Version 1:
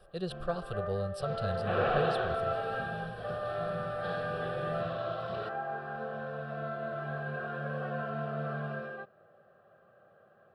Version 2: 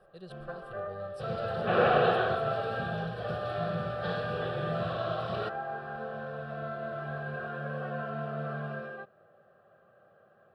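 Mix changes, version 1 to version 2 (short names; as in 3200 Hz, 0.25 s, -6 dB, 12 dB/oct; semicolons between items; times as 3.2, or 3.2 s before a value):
speech -11.5 dB; second sound +5.5 dB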